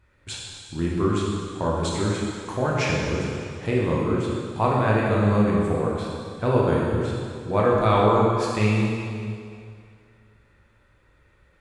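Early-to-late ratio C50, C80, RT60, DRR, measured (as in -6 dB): -1.0 dB, 0.5 dB, 2.3 s, -4.5 dB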